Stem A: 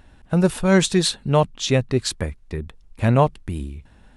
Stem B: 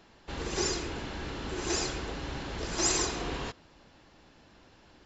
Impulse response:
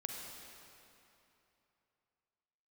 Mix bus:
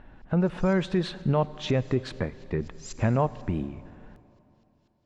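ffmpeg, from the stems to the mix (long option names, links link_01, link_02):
-filter_complex "[0:a]lowpass=2000,equalizer=frequency=71:width_type=o:width=0.45:gain=-14,alimiter=limit=-16.5dB:level=0:latency=1:release=248,volume=0.5dB,asplit=3[link_01][link_02][link_03];[link_02]volume=-12.5dB[link_04];[1:a]bandpass=frequency=5800:width_type=q:width=0.62:csg=0,aeval=exprs='val(0)*pow(10,-26*if(lt(mod(-4.1*n/s,1),2*abs(-4.1)/1000),1-mod(-4.1*n/s,1)/(2*abs(-4.1)/1000),(mod(-4.1*n/s,1)-2*abs(-4.1)/1000)/(1-2*abs(-4.1)/1000))/20)':channel_layout=same,volume=-11.5dB,asplit=2[link_05][link_06];[link_06]volume=-8dB[link_07];[link_03]apad=whole_len=222858[link_08];[link_05][link_08]sidechaincompress=threshold=-37dB:ratio=8:attack=16:release=127[link_09];[2:a]atrim=start_sample=2205[link_10];[link_04][link_07]amix=inputs=2:normalize=0[link_11];[link_11][link_10]afir=irnorm=-1:irlink=0[link_12];[link_01][link_09][link_12]amix=inputs=3:normalize=0"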